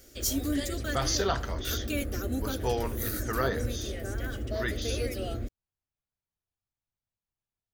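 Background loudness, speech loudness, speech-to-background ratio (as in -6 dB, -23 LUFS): -33.5 LUFS, -34.0 LUFS, -0.5 dB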